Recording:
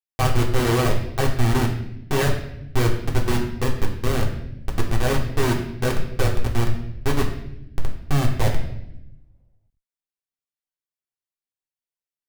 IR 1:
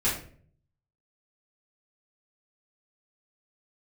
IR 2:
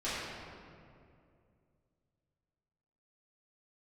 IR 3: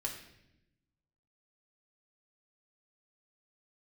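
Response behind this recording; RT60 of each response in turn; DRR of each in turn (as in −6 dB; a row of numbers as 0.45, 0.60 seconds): 3; 0.50, 2.4, 0.85 seconds; −9.0, −13.5, −1.5 decibels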